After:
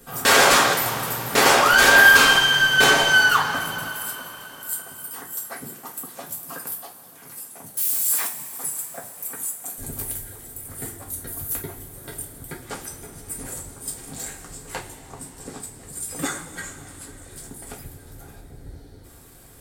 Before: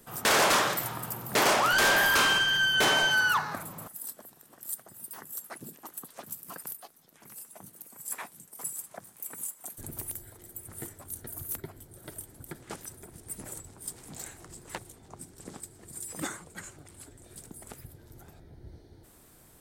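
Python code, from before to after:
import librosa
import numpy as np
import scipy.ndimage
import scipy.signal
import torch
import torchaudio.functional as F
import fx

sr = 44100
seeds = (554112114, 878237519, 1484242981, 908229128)

y = fx.crossing_spikes(x, sr, level_db=-27.5, at=(7.77, 8.27))
y = fx.rev_double_slope(y, sr, seeds[0], early_s=0.27, late_s=4.3, knee_db=-20, drr_db=-2.5)
y = F.gain(torch.from_numpy(y), 4.0).numpy()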